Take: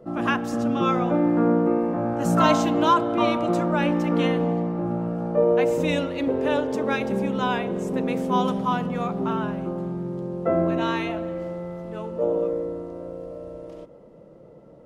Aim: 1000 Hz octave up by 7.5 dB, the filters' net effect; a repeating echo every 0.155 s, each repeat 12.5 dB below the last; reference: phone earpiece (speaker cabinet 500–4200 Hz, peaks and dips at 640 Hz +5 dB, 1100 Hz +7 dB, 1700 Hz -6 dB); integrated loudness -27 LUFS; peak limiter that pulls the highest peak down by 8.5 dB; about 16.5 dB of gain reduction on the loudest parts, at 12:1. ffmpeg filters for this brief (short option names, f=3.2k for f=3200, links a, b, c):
-af "equalizer=f=1k:t=o:g=4.5,acompressor=threshold=-27dB:ratio=12,alimiter=level_in=2.5dB:limit=-24dB:level=0:latency=1,volume=-2.5dB,highpass=500,equalizer=f=640:t=q:w=4:g=5,equalizer=f=1.1k:t=q:w=4:g=7,equalizer=f=1.7k:t=q:w=4:g=-6,lowpass=f=4.2k:w=0.5412,lowpass=f=4.2k:w=1.3066,aecho=1:1:155|310|465:0.237|0.0569|0.0137,volume=9.5dB"